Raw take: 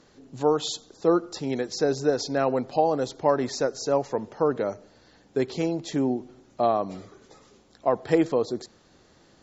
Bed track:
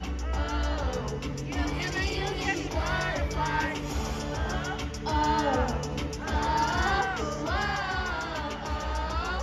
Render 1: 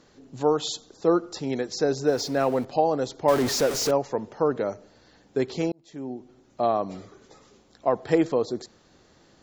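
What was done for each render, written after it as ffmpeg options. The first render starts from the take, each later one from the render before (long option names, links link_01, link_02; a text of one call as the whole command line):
ffmpeg -i in.wav -filter_complex "[0:a]asettb=1/sr,asplit=3[link_01][link_02][link_03];[link_01]atrim=end=2.074[link_04];[link_02]atrim=start=2.07:end=2.65,asetpts=PTS-STARTPTS,afade=type=in:duration=0.004:curve=qsin,afade=type=out:start_time=0.576:duration=0.004:curve=qsin,aeval=exprs='val(0)+0.5*0.0119*sgn(val(0))':channel_layout=same[link_05];[link_03]atrim=start=2.646[link_06];[link_04][link_05]acrossfade=duration=0.004:curve1=hsin:curve2=qsin[link_07];[link_07][link_06]acrossfade=duration=0.004:curve1=qsin:curve2=hsin,asettb=1/sr,asplit=3[link_08][link_09][link_10];[link_08]atrim=end=3.284[link_11];[link_09]atrim=start=3.28:end=3.91,asetpts=PTS-STARTPTS,afade=type=in:duration=0.004:curve=qsin,afade=type=out:start_time=0.626:duration=0.004:curve=qsin,aeval=exprs='val(0)+0.5*0.0596*sgn(val(0))':channel_layout=same[link_12];[link_10]atrim=start=3.906[link_13];[link_11][link_12]acrossfade=duration=0.004:curve1=hsin:curve2=qsin[link_14];[link_14][link_13]acrossfade=duration=0.004:curve1=qsin:curve2=hsin,asplit=2[link_15][link_16];[link_15]atrim=end=5.72,asetpts=PTS-STARTPTS,afade=type=out:start_time=5.716:duration=0.004:curve=hsin[link_17];[link_16]atrim=start=5.72,asetpts=PTS-STARTPTS,afade=type=in:duration=1.05[link_18];[link_17][link_18]concat=n=2:v=0:a=1" out.wav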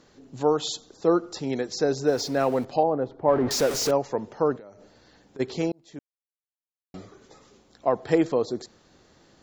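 ffmpeg -i in.wav -filter_complex "[0:a]asettb=1/sr,asplit=3[link_01][link_02][link_03];[link_01]atrim=end=2.834[link_04];[link_02]atrim=start=2.83:end=3.51,asetpts=PTS-STARTPTS,afade=type=in:duration=0.004:curve=qsin,afade=type=out:start_time=0.676:duration=0.004:curve=qsin,lowpass=1300[link_05];[link_03]atrim=start=3.506[link_06];[link_04][link_05]acrossfade=duration=0.004:curve1=hsin:curve2=qsin[link_07];[link_07][link_06]acrossfade=duration=0.004:curve1=qsin:curve2=hsin,asplit=3[link_08][link_09][link_10];[link_08]afade=type=out:start_time=4.56:duration=0.02[link_11];[link_09]acompressor=threshold=-42dB:ratio=8:attack=3.2:release=140:knee=1:detection=peak,afade=type=in:start_time=4.56:duration=0.02,afade=type=out:start_time=5.39:duration=0.02[link_12];[link_10]afade=type=in:start_time=5.39:duration=0.02[link_13];[link_11][link_12][link_13]amix=inputs=3:normalize=0,asplit=3[link_14][link_15][link_16];[link_14]atrim=end=5.99,asetpts=PTS-STARTPTS,afade=type=out:start_time=5.986:duration=0.004:curve=hsin[link_17];[link_15]atrim=start=5.99:end=6.94,asetpts=PTS-STARTPTS,volume=0[link_18];[link_16]atrim=start=6.94,asetpts=PTS-STARTPTS,afade=type=in:duration=0.004:curve=hsin[link_19];[link_17][link_18][link_19]concat=n=3:v=0:a=1" out.wav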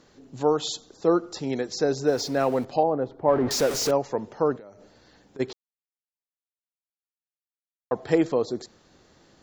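ffmpeg -i in.wav -filter_complex "[0:a]asplit=3[link_01][link_02][link_03];[link_01]atrim=end=5.53,asetpts=PTS-STARTPTS,afade=type=out:start_time=5.526:duration=0.004:curve=hsin[link_04];[link_02]atrim=start=5.53:end=7.91,asetpts=PTS-STARTPTS,volume=0[link_05];[link_03]atrim=start=7.91,asetpts=PTS-STARTPTS,afade=type=in:duration=0.004:curve=hsin[link_06];[link_04][link_05][link_06]concat=n=3:v=0:a=1" out.wav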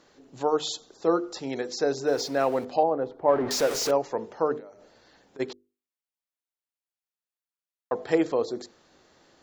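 ffmpeg -i in.wav -af "bass=frequency=250:gain=-8,treble=frequency=4000:gain=-2,bandreject=frequency=50:width_type=h:width=6,bandreject=frequency=100:width_type=h:width=6,bandreject=frequency=150:width_type=h:width=6,bandreject=frequency=200:width_type=h:width=6,bandreject=frequency=250:width_type=h:width=6,bandreject=frequency=300:width_type=h:width=6,bandreject=frequency=350:width_type=h:width=6,bandreject=frequency=400:width_type=h:width=6,bandreject=frequency=450:width_type=h:width=6,bandreject=frequency=500:width_type=h:width=6" out.wav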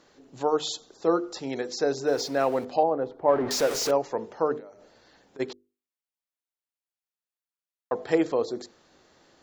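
ffmpeg -i in.wav -af anull out.wav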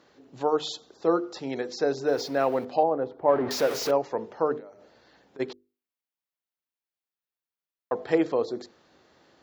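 ffmpeg -i in.wav -af "highpass=55,equalizer=frequency=7900:width_type=o:width=0.95:gain=-8.5" out.wav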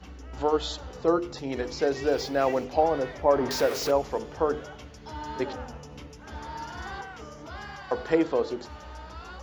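ffmpeg -i in.wav -i bed.wav -filter_complex "[1:a]volume=-11.5dB[link_01];[0:a][link_01]amix=inputs=2:normalize=0" out.wav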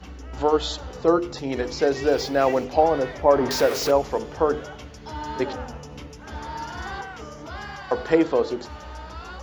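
ffmpeg -i in.wav -af "volume=4.5dB" out.wav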